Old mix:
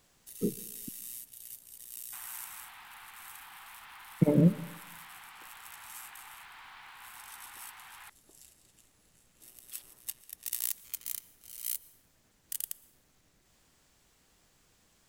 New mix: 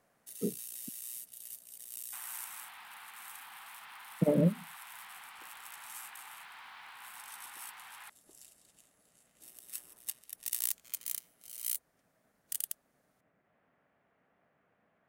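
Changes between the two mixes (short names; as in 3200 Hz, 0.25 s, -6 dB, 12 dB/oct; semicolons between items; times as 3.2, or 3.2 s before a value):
speech: add speaker cabinet 180–2000 Hz, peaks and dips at 340 Hz -6 dB, 650 Hz +6 dB, 950 Hz -3 dB; first sound: add bell 9400 Hz +3 dB 0.21 oct; reverb: off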